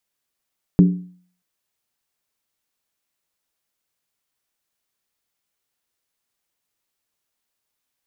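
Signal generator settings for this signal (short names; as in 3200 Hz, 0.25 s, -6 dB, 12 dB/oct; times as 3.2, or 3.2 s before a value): skin hit, lowest mode 180 Hz, decay 0.50 s, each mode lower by 8 dB, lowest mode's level -5.5 dB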